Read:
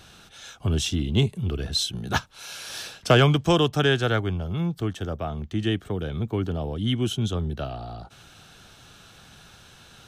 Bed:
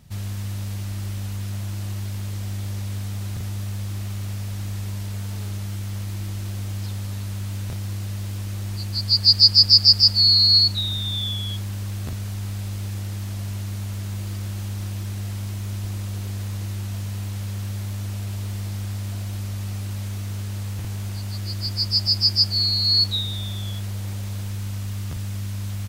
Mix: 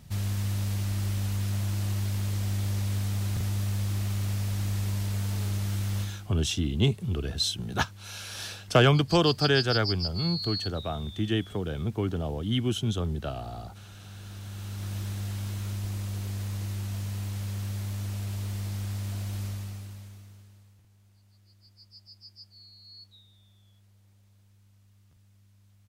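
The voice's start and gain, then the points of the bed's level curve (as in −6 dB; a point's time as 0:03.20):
5.65 s, −2.5 dB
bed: 0:06.01 0 dB
0:06.30 −19 dB
0:13.89 −19 dB
0:14.96 −4 dB
0:19.46 −4 dB
0:20.87 −31.5 dB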